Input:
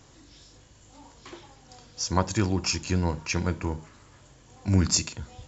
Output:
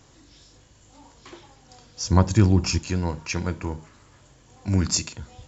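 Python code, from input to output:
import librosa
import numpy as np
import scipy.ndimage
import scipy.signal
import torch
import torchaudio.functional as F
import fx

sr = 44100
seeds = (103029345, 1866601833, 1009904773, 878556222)

y = fx.low_shelf(x, sr, hz=290.0, db=11.5, at=(2.04, 2.79))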